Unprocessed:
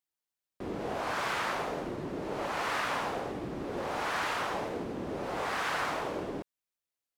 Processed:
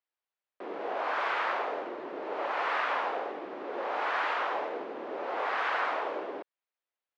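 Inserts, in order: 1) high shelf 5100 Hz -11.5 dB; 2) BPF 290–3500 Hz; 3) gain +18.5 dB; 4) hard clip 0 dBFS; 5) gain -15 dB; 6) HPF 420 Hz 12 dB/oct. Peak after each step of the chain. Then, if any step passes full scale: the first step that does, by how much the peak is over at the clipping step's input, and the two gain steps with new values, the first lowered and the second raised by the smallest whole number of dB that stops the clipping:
-20.0, -21.0, -2.5, -2.5, -17.5, -17.5 dBFS; no overload

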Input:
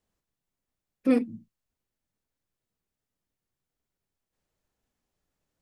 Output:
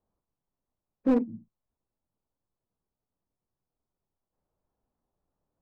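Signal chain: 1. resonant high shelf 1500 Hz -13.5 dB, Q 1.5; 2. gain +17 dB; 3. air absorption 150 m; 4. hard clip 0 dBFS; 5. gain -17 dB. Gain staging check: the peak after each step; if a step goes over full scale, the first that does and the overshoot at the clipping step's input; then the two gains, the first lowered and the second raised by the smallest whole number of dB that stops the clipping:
-11.0, +6.0, +5.5, 0.0, -17.0 dBFS; step 2, 5.5 dB; step 2 +11 dB, step 5 -11 dB

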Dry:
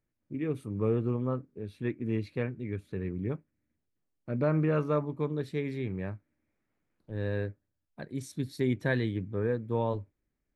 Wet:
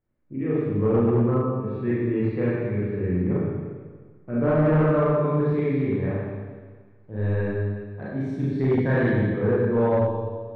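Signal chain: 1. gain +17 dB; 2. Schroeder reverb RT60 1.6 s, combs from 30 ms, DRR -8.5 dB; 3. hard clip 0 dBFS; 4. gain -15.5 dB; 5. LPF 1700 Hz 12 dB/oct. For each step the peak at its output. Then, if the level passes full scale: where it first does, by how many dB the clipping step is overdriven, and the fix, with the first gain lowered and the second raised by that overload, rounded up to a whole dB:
+1.0, +9.5, 0.0, -15.5, -15.0 dBFS; step 1, 9.5 dB; step 1 +7 dB, step 4 -5.5 dB

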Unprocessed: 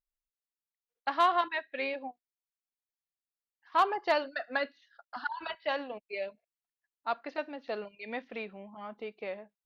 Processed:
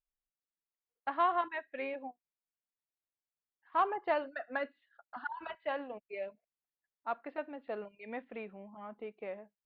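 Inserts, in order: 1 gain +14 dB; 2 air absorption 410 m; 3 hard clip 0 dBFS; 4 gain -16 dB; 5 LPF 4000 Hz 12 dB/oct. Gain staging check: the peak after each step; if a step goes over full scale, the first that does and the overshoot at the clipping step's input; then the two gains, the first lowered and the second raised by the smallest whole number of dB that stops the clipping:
-1.5, -3.5, -3.5, -19.5, -19.5 dBFS; no overload

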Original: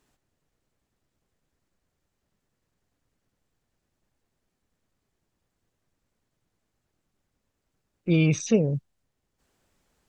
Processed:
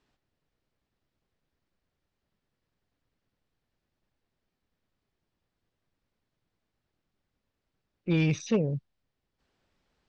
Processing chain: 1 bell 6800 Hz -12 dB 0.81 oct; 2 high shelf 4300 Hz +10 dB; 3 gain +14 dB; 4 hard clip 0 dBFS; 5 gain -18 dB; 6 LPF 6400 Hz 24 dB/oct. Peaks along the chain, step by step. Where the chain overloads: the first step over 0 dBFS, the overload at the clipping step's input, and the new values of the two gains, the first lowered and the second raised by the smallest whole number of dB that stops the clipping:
-10.0, -10.0, +4.0, 0.0, -18.0, -17.5 dBFS; step 3, 4.0 dB; step 3 +10 dB, step 5 -14 dB

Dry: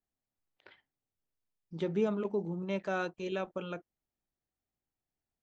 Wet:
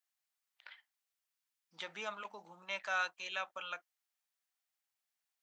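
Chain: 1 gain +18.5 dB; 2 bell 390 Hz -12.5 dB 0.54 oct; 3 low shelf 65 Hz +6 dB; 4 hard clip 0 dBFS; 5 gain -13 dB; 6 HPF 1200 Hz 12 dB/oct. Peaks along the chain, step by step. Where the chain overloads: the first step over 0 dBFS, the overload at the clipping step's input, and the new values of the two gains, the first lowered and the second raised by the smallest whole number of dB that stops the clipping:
-0.5, -5.0, -5.0, -5.0, -18.0, -23.5 dBFS; no overload

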